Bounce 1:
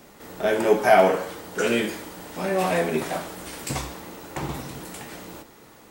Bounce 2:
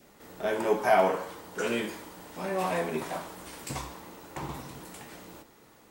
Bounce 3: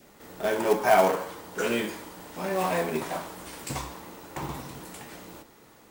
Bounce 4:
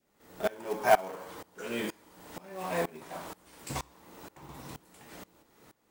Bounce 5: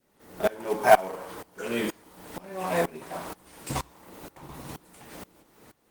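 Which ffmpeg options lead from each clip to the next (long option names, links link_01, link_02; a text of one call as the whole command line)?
ffmpeg -i in.wav -af "adynamicequalizer=threshold=0.00794:dfrequency=1000:dqfactor=3.5:tfrequency=1000:tqfactor=3.5:attack=5:release=100:ratio=0.375:range=3.5:mode=boostabove:tftype=bell,volume=-7.5dB" out.wav
ffmpeg -i in.wav -af "acrusher=bits=4:mode=log:mix=0:aa=0.000001,volume=2.5dB" out.wav
ffmpeg -i in.wav -af "aeval=exprs='val(0)*pow(10,-23*if(lt(mod(-2.1*n/s,1),2*abs(-2.1)/1000),1-mod(-2.1*n/s,1)/(2*abs(-2.1)/1000),(mod(-2.1*n/s,1)-2*abs(-2.1)/1000)/(1-2*abs(-2.1)/1000))/20)':channel_layout=same" out.wav
ffmpeg -i in.wav -af "volume=6dB" -ar 48000 -c:a libopus -b:a 24k out.opus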